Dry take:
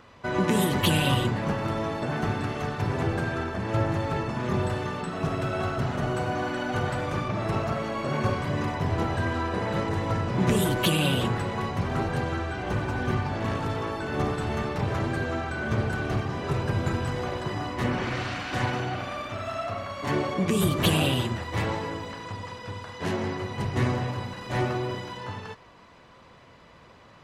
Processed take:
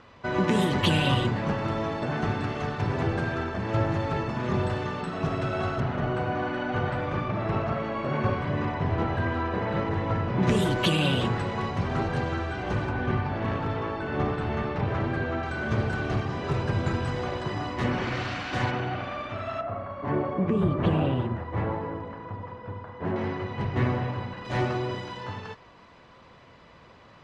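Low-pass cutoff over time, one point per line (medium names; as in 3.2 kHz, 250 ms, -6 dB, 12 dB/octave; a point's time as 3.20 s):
5.7 kHz
from 5.80 s 3 kHz
from 10.43 s 6.1 kHz
from 12.89 s 3.1 kHz
from 15.43 s 6.2 kHz
from 18.71 s 3.4 kHz
from 19.61 s 1.3 kHz
from 23.16 s 2.9 kHz
from 24.45 s 6 kHz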